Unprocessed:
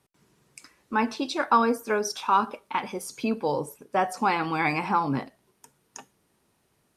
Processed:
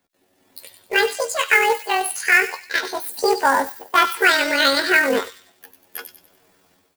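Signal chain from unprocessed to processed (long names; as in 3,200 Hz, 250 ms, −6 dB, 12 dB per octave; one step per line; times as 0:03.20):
pitch shift by two crossfaded delay taps +10.5 semitones
automatic gain control gain up to 13 dB
floating-point word with a short mantissa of 2 bits
double-tracking delay 13 ms −13.5 dB
delay with a high-pass on its return 96 ms, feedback 39%, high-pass 3,500 Hz, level −6.5 dB
level −1 dB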